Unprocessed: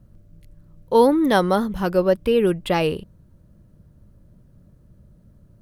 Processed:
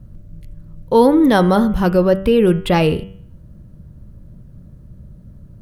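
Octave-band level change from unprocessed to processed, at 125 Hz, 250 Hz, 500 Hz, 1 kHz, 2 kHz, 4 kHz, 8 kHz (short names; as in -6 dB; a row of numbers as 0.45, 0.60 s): +9.0 dB, +7.0 dB, +3.5 dB, +3.5 dB, +3.5 dB, +3.5 dB, n/a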